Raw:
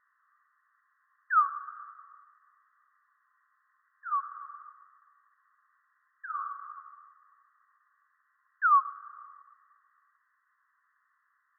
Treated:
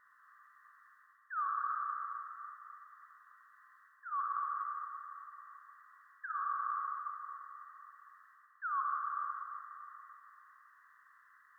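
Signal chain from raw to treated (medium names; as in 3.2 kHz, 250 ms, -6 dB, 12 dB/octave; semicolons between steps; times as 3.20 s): reverse; compression 10:1, threshold -42 dBFS, peak gain reduction 23 dB; reverse; reverberation RT60 3.1 s, pre-delay 43 ms, DRR 1 dB; trim +6.5 dB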